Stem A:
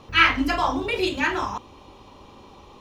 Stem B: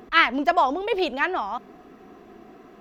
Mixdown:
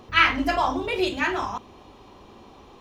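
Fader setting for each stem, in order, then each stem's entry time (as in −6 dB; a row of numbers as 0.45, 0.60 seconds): −2.5, −7.0 decibels; 0.00, 0.00 seconds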